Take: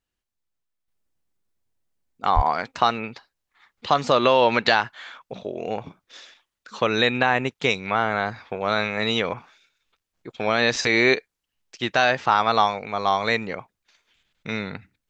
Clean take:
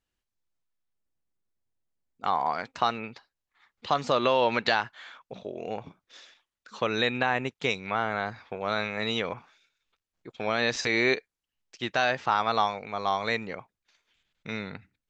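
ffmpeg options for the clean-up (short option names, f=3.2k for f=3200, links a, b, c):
-filter_complex "[0:a]asplit=3[a][b][c];[a]afade=t=out:st=2.35:d=0.02[d];[b]highpass=f=140:w=0.5412,highpass=f=140:w=1.3066,afade=t=in:st=2.35:d=0.02,afade=t=out:st=2.47:d=0.02[e];[c]afade=t=in:st=2.47:d=0.02[f];[d][e][f]amix=inputs=3:normalize=0,asetnsamples=n=441:p=0,asendcmd='0.88 volume volume -6dB',volume=0dB"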